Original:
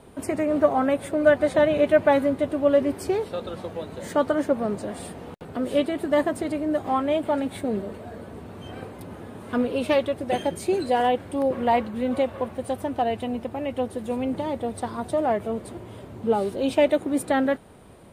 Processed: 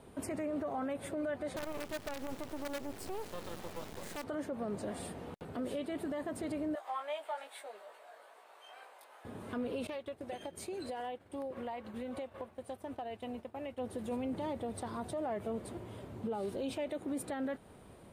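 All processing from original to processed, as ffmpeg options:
-filter_complex "[0:a]asettb=1/sr,asplit=3[s0][s1][s2];[s0]atrim=end=1.564[s3];[s1]atrim=start=1.56:end=4.24,asetpts=PTS-STARTPTS,afade=t=in:d=0.004:c=qsin,afade=t=out:st=2.676:d=0.004:c=qsin,acompressor=threshold=0.0447:ratio=1.5:attack=3.2:release=140:knee=1:detection=peak,acrusher=bits=4:dc=4:mix=0:aa=0.000001[s4];[s2]atrim=start=4.236[s5];[s3][s4]acrossfade=d=0.004:c1=hsin:c2=qsin[s6];[s6][s5]acrossfade=d=0.004:c1=qsin:c2=hsin,asettb=1/sr,asplit=3[s7][s8][s9];[s7]atrim=end=6.754[s10];[s8]atrim=start=6.75:end=9.25,asetpts=PTS-STARTPTS,afade=t=in:d=0.004:c=qsin,afade=t=out:st=2.496:d=0.004:c=qsin,highpass=f=680:w=0.5412,highpass=f=680:w=1.3066,flanger=delay=16.5:depth=3.1:speed=2.4[s11];[s9]atrim=start=9.246[s12];[s10][s11]acrossfade=d=0.004:c1=hsin:c2=qsin[s13];[s13][s12]acrossfade=d=0.004:c1=qsin:c2=hsin,asettb=1/sr,asplit=3[s14][s15][s16];[s14]atrim=end=9.874[s17];[s15]atrim=start=9.87:end=13.79,asetpts=PTS-STARTPTS,afade=t=in:d=0.004:c=qsin,afade=t=out:st=3.916:d=0.004:c=qsin,equalizer=f=160:w=0.61:g=-5,acompressor=threshold=0.0316:ratio=16:attack=3.2:release=140:knee=1:detection=peak,agate=range=0.0224:threshold=0.0178:ratio=3:release=100:detection=peak[s18];[s16]atrim=start=13.786[s19];[s17][s18]acrossfade=d=0.004:c1=hsin:c2=qsin[s20];[s20][s19]acrossfade=d=0.004:c1=qsin:c2=hsin,acompressor=threshold=0.0501:ratio=2,alimiter=limit=0.0668:level=0:latency=1:release=24,volume=0.473"

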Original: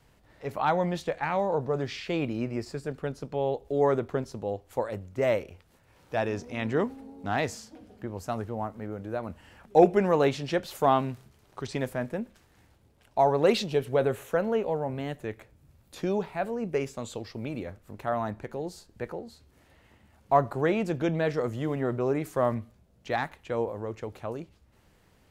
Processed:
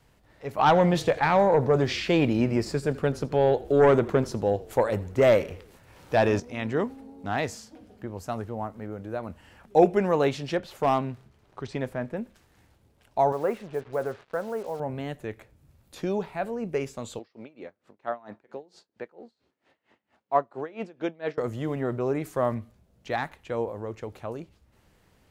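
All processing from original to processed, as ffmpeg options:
-filter_complex "[0:a]asettb=1/sr,asplit=3[s0][s1][s2];[s0]atrim=end=0.584[s3];[s1]atrim=start=0.58:end=6.4,asetpts=PTS-STARTPTS,afade=t=in:d=0.004:c=qsin,afade=t=out:st=5.816:d=0.004:c=qsin,aeval=exprs='0.237*sin(PI/2*1.58*val(0)/0.237)':c=same,asplit=5[s4][s5][s6][s7][s8];[s5]adelay=84,afreqshift=-30,volume=0.1[s9];[s6]adelay=168,afreqshift=-60,volume=0.0501[s10];[s7]adelay=252,afreqshift=-90,volume=0.0251[s11];[s8]adelay=336,afreqshift=-120,volume=0.0124[s12];[s4][s9][s10][s11][s12]amix=inputs=5:normalize=0,atrim=end_sample=256662[s13];[s2]atrim=start=6.396[s14];[s3][s13]acrossfade=d=0.004:c1=hsin:c2=qsin[s15];[s15][s14]acrossfade=d=0.004:c1=qsin:c2=hsin,asettb=1/sr,asplit=3[s16][s17][s18];[s16]atrim=end=10.554[s19];[s17]atrim=start=10.55:end=12.17,asetpts=PTS-STARTPTS,afade=t=in:d=0.004:c=qsin,afade=t=out:st=1.616:d=0.004:c=qsin,highshelf=f=5200:g=-11.5,asoftclip=type=hard:threshold=0.168[s20];[s18]atrim=start=12.166[s21];[s19][s20]acrossfade=d=0.004:c1=hsin:c2=qsin[s22];[s22][s21]acrossfade=d=0.004:c1=qsin:c2=hsin,asettb=1/sr,asplit=3[s23][s24][s25];[s23]atrim=end=13.324[s26];[s24]atrim=start=13.32:end=14.8,asetpts=PTS-STARTPTS,afade=t=in:d=0.004:c=qsin,afade=t=out:st=1.476:d=0.004:c=qsin,lowpass=f=1700:w=0.5412,lowpass=f=1700:w=1.3066,lowshelf=f=470:g=-9.5,acrusher=bits=7:mix=0:aa=0.5[s27];[s25]atrim=start=14.796[s28];[s26][s27]acrossfade=d=0.004:c1=hsin:c2=qsin[s29];[s29][s28]acrossfade=d=0.004:c1=qsin:c2=hsin,asettb=1/sr,asplit=3[s30][s31][s32];[s30]atrim=end=17.194[s33];[s31]atrim=start=17.19:end=21.38,asetpts=PTS-STARTPTS,afade=t=in:d=0.004:c=qsin,afade=t=out:st=4.186:d=0.004:c=qsin,highpass=250,lowpass=4700,aeval=exprs='val(0)*pow(10,-23*(0.5-0.5*cos(2*PI*4.4*n/s))/20)':c=same[s34];[s32]atrim=start=21.376[s35];[s33][s34]acrossfade=d=0.004:c1=hsin:c2=qsin[s36];[s36][s35]acrossfade=d=0.004:c1=qsin:c2=hsin"

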